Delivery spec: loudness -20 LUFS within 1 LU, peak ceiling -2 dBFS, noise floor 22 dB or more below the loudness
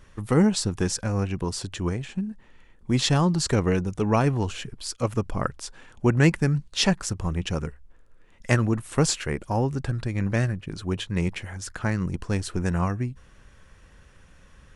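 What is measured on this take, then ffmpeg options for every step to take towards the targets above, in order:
loudness -25.5 LUFS; peak level -3.5 dBFS; loudness target -20.0 LUFS
-> -af "volume=1.88,alimiter=limit=0.794:level=0:latency=1"

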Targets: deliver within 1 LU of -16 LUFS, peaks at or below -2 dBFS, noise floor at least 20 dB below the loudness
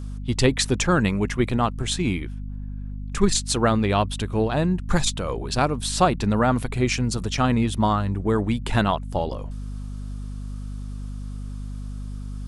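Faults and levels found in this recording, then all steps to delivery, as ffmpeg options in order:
hum 50 Hz; highest harmonic 250 Hz; hum level -29 dBFS; loudness -23.0 LUFS; peak level -4.5 dBFS; loudness target -16.0 LUFS
-> -af "bandreject=f=50:t=h:w=6,bandreject=f=100:t=h:w=6,bandreject=f=150:t=h:w=6,bandreject=f=200:t=h:w=6,bandreject=f=250:t=h:w=6"
-af "volume=2.24,alimiter=limit=0.794:level=0:latency=1"

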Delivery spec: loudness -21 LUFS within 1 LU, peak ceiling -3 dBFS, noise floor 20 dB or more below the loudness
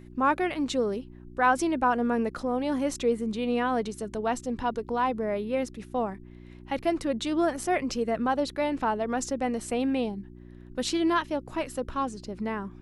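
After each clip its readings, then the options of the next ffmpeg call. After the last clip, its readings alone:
hum 60 Hz; highest harmonic 360 Hz; hum level -45 dBFS; loudness -28.5 LUFS; peak level -11.0 dBFS; loudness target -21.0 LUFS
-> -af "bandreject=f=60:t=h:w=4,bandreject=f=120:t=h:w=4,bandreject=f=180:t=h:w=4,bandreject=f=240:t=h:w=4,bandreject=f=300:t=h:w=4,bandreject=f=360:t=h:w=4"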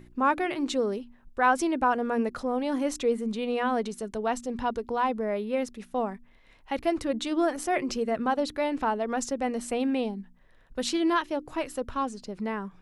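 hum not found; loudness -28.5 LUFS; peak level -11.0 dBFS; loudness target -21.0 LUFS
-> -af "volume=2.37"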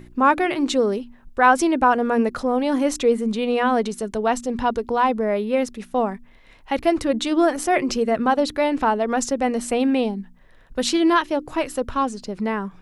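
loudness -21.0 LUFS; peak level -3.5 dBFS; noise floor -49 dBFS

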